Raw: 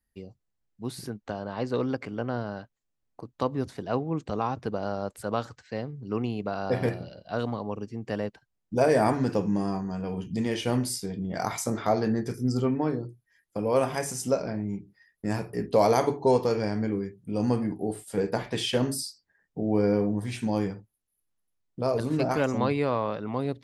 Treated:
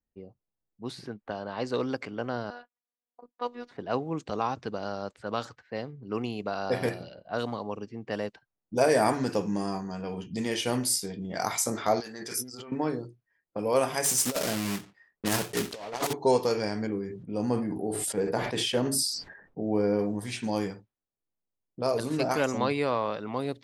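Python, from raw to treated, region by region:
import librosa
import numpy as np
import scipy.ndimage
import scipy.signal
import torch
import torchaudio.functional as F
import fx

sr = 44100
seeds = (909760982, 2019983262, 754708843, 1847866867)

y = fx.chain(x, sr, fx.weighting(curve='A'),
    fx.robotise(hz=242.0), at=(2.5, 3.71))
y = fx.chain(y, sr, fx.lowpass(hz=9700.0, slope=12),
    fx.peak_eq(hz=660.0, db=-3.0, octaves=1.6), at=(4.54, 5.41))
y = fx.chain(y, sr, fx.tilt_eq(slope=4.0),
    fx.over_compress(threshold_db=-39.0, ratio=-1.0), at=(12.0, 12.72))
y = fx.chain(y, sr, fx.block_float(bits=3),
    fx.over_compress(threshold_db=-27.0, ratio=-0.5), at=(14.04, 16.15))
y = fx.chain(y, sr, fx.high_shelf(hz=2000.0, db=-9.5),
    fx.sustainer(db_per_s=48.0), at=(16.87, 19.99))
y = fx.high_shelf(y, sr, hz=3700.0, db=7.5)
y = fx.env_lowpass(y, sr, base_hz=720.0, full_db=-25.0)
y = fx.low_shelf(y, sr, hz=180.0, db=-9.0)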